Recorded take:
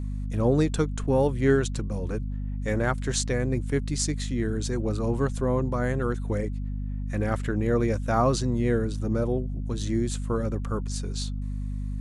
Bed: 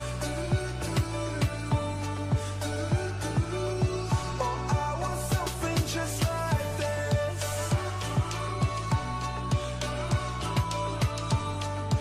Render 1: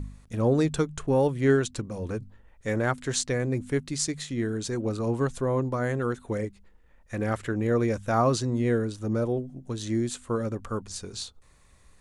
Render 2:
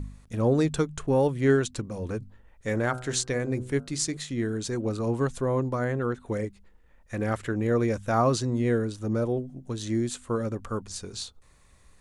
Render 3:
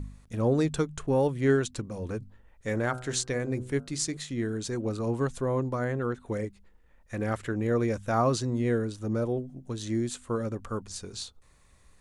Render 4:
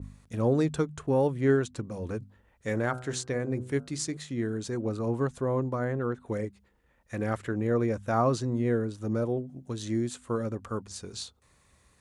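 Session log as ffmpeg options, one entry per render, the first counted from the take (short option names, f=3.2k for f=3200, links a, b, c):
-af "bandreject=f=50:t=h:w=4,bandreject=f=100:t=h:w=4,bandreject=f=150:t=h:w=4,bandreject=f=200:t=h:w=4,bandreject=f=250:t=h:w=4"
-filter_complex "[0:a]asettb=1/sr,asplit=3[a][b][c];[a]atrim=end=2.694[d];[b]atrim=start=2.69:end=4.17,asetpts=PTS-STARTPTS,afade=t=in:d=0.004:c=qsin,afade=t=out:st=1.476:d=0.004:c=qsin,bandreject=f=63.13:t=h:w=4,bandreject=f=126.26:t=h:w=4,bandreject=f=189.39:t=h:w=4,bandreject=f=252.52:t=h:w=4,bandreject=f=315.65:t=h:w=4,bandreject=f=378.78:t=h:w=4,bandreject=f=441.91:t=h:w=4,bandreject=f=505.04:t=h:w=4,bandreject=f=568.17:t=h:w=4,bandreject=f=631.3:t=h:w=4,bandreject=f=694.43:t=h:w=4,bandreject=f=757.56:t=h:w=4,bandreject=f=820.69:t=h:w=4,bandreject=f=883.82:t=h:w=4,bandreject=f=946.95:t=h:w=4,bandreject=f=1.01008k:t=h:w=4,bandreject=f=1.07321k:t=h:w=4,bandreject=f=1.13634k:t=h:w=4,bandreject=f=1.19947k:t=h:w=4,bandreject=f=1.2626k:t=h:w=4,bandreject=f=1.32573k:t=h:w=4,bandreject=f=1.38886k:t=h:w=4,bandreject=f=1.45199k:t=h:w=4,bandreject=f=1.51512k:t=h:w=4,bandreject=f=1.57825k:t=h:w=4[e];[c]atrim=start=4.166[f];[d][e]acrossfade=d=0.004:c1=hsin:c2=qsin[g];[g][f]acrossfade=d=0.004:c1=qsin:c2=hsin,asettb=1/sr,asplit=3[h][i][j];[h]atrim=end=5.844[k];[i]atrim=start=5.84:end=6.26,asetpts=PTS-STARTPTS,afade=t=in:d=0.004:c=qsin,afade=t=out:st=0.416:d=0.004:c=qsin,highshelf=f=5.2k:g=-12[l];[j]atrim=start=6.256[m];[k][l]acrossfade=d=0.004:c1=hsin:c2=qsin[n];[n][m]acrossfade=d=0.004:c1=qsin:c2=hsin"
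-af "volume=-2dB"
-af "highpass=62,adynamicequalizer=threshold=0.00447:dfrequency=2000:dqfactor=0.7:tfrequency=2000:tqfactor=0.7:attack=5:release=100:ratio=0.375:range=4:mode=cutabove:tftype=highshelf"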